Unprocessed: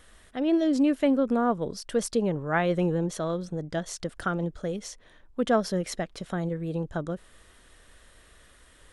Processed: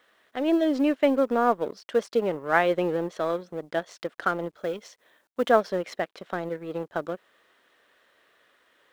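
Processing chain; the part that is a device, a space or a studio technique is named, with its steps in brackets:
phone line with mismatched companding (band-pass filter 370–3,400 Hz; mu-law and A-law mismatch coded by A)
0:04.56–0:05.50: high-shelf EQ 5,600 Hz +6 dB
level +5.5 dB

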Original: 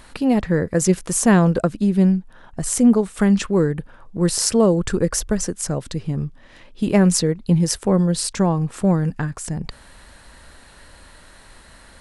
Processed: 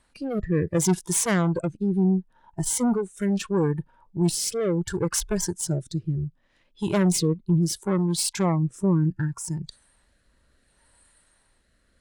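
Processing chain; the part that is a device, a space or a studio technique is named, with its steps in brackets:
overdriven rotary cabinet (tube saturation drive 18 dB, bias 0.6; rotating-speaker cabinet horn 0.7 Hz)
noise reduction from a noise print of the clip's start 16 dB
level +2.5 dB

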